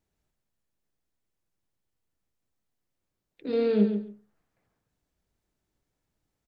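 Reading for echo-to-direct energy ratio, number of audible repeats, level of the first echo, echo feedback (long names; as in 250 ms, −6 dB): −8.5 dB, 2, −8.5 dB, 16%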